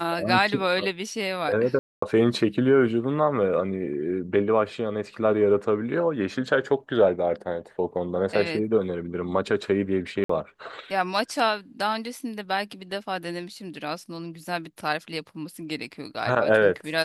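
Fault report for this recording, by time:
0:01.79–0:02.02: drop-out 234 ms
0:10.24–0:10.29: drop-out 54 ms

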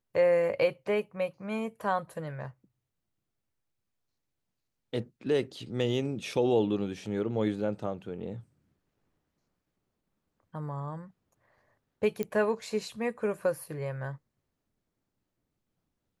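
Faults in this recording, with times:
0:12.23: click −19 dBFS

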